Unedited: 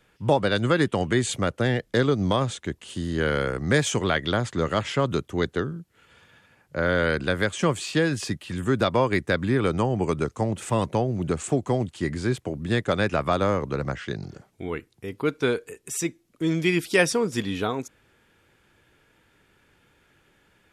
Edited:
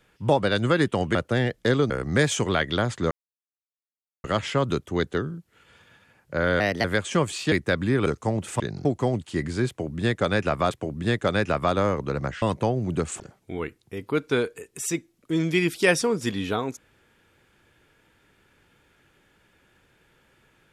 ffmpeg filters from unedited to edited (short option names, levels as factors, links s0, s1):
-filter_complex "[0:a]asplit=13[s0][s1][s2][s3][s4][s5][s6][s7][s8][s9][s10][s11][s12];[s0]atrim=end=1.152[s13];[s1]atrim=start=1.438:end=2.192[s14];[s2]atrim=start=3.448:end=4.66,asetpts=PTS-STARTPTS,afade=t=out:st=1.208:d=0.004:c=hsin,apad=pad_dur=1.13[s15];[s3]atrim=start=4.66:end=7.024,asetpts=PTS-STARTPTS,afade=t=in:d=0.004:c=hsin[s16];[s4]atrim=start=7.02:end=7.32,asetpts=PTS-STARTPTS,asetrate=55125,aresample=44100[s17];[s5]atrim=start=7.316:end=8.002[s18];[s6]atrim=start=9.128:end=9.672[s19];[s7]atrim=start=10.198:end=10.742[s20];[s8]atrim=start=14.058:end=14.312[s21];[s9]atrim=start=11.518:end=13.382[s22];[s10]atrim=start=12.348:end=14.062[s23];[s11]atrim=start=10.738:end=11.522[s24];[s12]atrim=start=14.308[s25];[s13][s14]acrossfade=d=0.004:c1=hsin:c2=hsin[s26];[s15][s16]concat=n=2:v=0:a=1[s27];[s26][s27]acrossfade=d=0.004:c1=hsin:c2=hsin[s28];[s28][s17]acrossfade=d=0.004:c1=hsin:c2=hsin[s29];[s29][s18]acrossfade=d=0.004:c1=hsin:c2=hsin[s30];[s30][s19]acrossfade=d=0.004:c1=hsin:c2=hsin[s31];[s31][s20]acrossfade=d=0.004:c1=hsin:c2=hsin[s32];[s32][s21]acrossfade=d=0.004:c1=hsin:c2=hsin[s33];[s33][s22]acrossfade=d=0.004:c1=hsin:c2=hsin[s34];[s34][s23]acrossfade=d=0.004:c1=hsin:c2=hsin[s35];[s35][s24]acrossfade=d=0.004:c1=hsin:c2=hsin[s36];[s36][s25]acrossfade=d=0.004:c1=hsin:c2=hsin"